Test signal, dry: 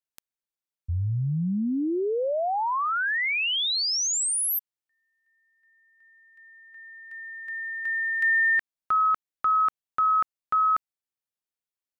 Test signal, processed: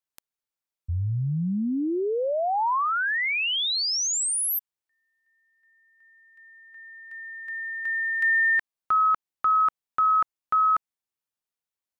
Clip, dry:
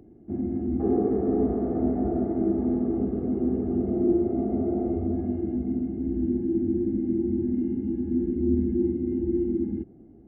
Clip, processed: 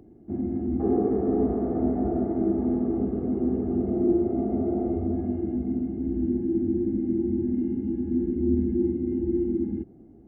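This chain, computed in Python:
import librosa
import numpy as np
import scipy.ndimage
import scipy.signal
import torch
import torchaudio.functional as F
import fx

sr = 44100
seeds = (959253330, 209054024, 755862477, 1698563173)

y = fx.peak_eq(x, sr, hz=970.0, db=2.5, octaves=0.76)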